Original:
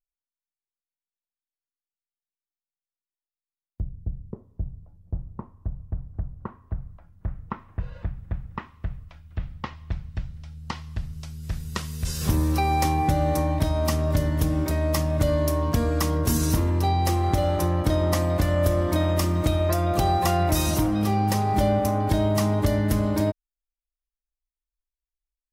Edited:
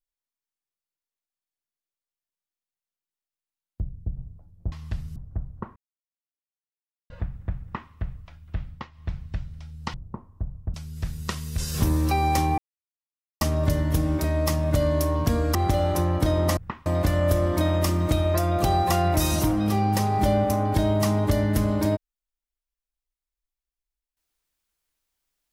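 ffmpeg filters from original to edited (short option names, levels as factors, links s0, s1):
-filter_complex "[0:a]asplit=15[s0][s1][s2][s3][s4][s5][s6][s7][s8][s9][s10][s11][s12][s13][s14];[s0]atrim=end=4.172[s15];[s1]atrim=start=4.638:end=5.192[s16];[s2]atrim=start=10.768:end=11.212[s17];[s3]atrim=start=5.988:end=6.59,asetpts=PTS-STARTPTS,afade=t=out:st=0.598:d=0.004:c=hsin[s18];[s4]atrim=start=6.59:end=7.93,asetpts=PTS-STARTPTS,volume=0[s19];[s5]atrim=start=7.93:end=9.73,asetpts=PTS-STARTPTS,afade=t=in:d=0.004:c=hsin,afade=t=out:st=1.51:d=0.29:c=qsin:silence=0.251189[s20];[s6]atrim=start=9.73:end=9.74,asetpts=PTS-STARTPTS,volume=0.251[s21];[s7]atrim=start=9.74:end=10.772,asetpts=PTS-STARTPTS,afade=t=in:d=0.29:c=qsin:silence=0.251189[s22];[s8]atrim=start=5.188:end=5.992[s23];[s9]atrim=start=11.208:end=13.05,asetpts=PTS-STARTPTS,afade=t=out:st=1.838:d=0.004:c=hsin[s24];[s10]atrim=start=13.05:end=13.88,asetpts=PTS-STARTPTS,volume=0[s25];[s11]atrim=start=13.88:end=16.022,asetpts=PTS-STARTPTS,afade=t=in:d=0.004:c=hsin[s26];[s12]atrim=start=17.188:end=18.212[s27];[s13]atrim=start=8.448:end=8.742[s28];[s14]atrim=start=18.208[s29];[s15][s16]acrossfade=d=0.004:c1=hsin:c2=hsin[s30];[s30][s17]acrossfade=d=0.004:c1=hsin:c2=hsin[s31];[s18][s19][s20][s21][s22]concat=n=5:v=0:a=1[s32];[s31][s32]acrossfade=d=0.004:c1=hsin:c2=hsin[s33];[s33][s23]acrossfade=d=0.004:c1=hsin:c2=hsin[s34];[s24][s25][s26]concat=n=3:v=0:a=1[s35];[s34][s35]acrossfade=d=0.004:c1=hsin:c2=hsin[s36];[s36][s27]acrossfade=d=0.004:c1=hsin:c2=hsin[s37];[s37][s28]acrossfade=d=0.004:c1=hsin:c2=hsin[s38];[s38][s29]acrossfade=d=0.004:c1=hsin:c2=hsin"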